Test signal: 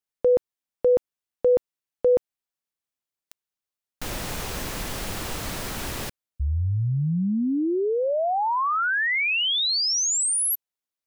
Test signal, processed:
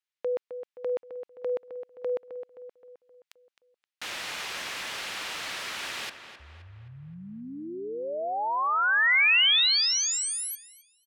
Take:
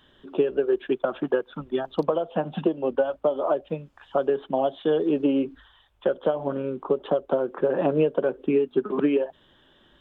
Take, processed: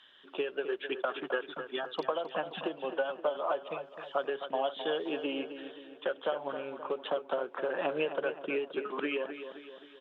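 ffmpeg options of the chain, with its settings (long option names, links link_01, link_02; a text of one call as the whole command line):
ffmpeg -i in.wav -filter_complex "[0:a]bandpass=frequency=2600:width_type=q:width=0.88:csg=0,asplit=2[link_01][link_02];[link_02]adelay=262,lowpass=frequency=3000:poles=1,volume=-9.5dB,asplit=2[link_03][link_04];[link_04]adelay=262,lowpass=frequency=3000:poles=1,volume=0.51,asplit=2[link_05][link_06];[link_06]adelay=262,lowpass=frequency=3000:poles=1,volume=0.51,asplit=2[link_07][link_08];[link_08]adelay=262,lowpass=frequency=3000:poles=1,volume=0.51,asplit=2[link_09][link_10];[link_10]adelay=262,lowpass=frequency=3000:poles=1,volume=0.51,asplit=2[link_11][link_12];[link_12]adelay=262,lowpass=frequency=3000:poles=1,volume=0.51[link_13];[link_03][link_05][link_07][link_09][link_11][link_13]amix=inputs=6:normalize=0[link_14];[link_01][link_14]amix=inputs=2:normalize=0,volume=3dB" out.wav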